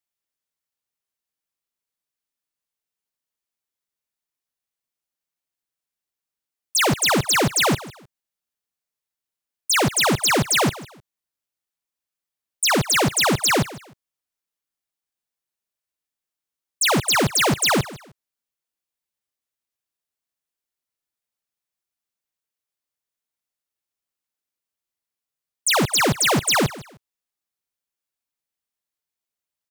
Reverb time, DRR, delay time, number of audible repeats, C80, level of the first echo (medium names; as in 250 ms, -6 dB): no reverb, no reverb, 154 ms, 2, no reverb, -18.0 dB